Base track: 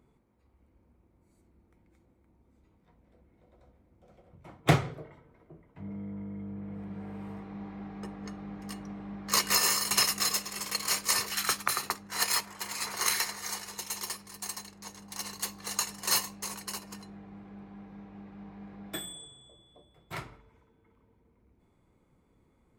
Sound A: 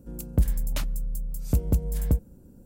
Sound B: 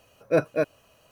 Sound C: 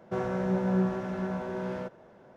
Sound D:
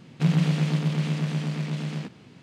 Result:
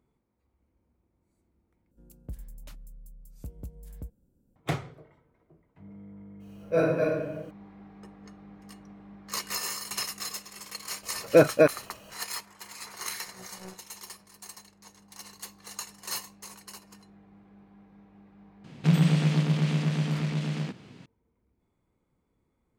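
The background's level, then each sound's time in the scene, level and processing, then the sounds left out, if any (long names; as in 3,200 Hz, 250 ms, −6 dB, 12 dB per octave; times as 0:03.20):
base track −7.5 dB
0:01.91: overwrite with A −18 dB
0:06.40: mix in B −13 dB + rectangular room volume 540 cubic metres, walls mixed, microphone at 5.3 metres
0:11.03: mix in B −7 dB + boost into a limiter +15 dB
0:12.88: mix in C −11.5 dB + power curve on the samples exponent 3
0:18.64: mix in D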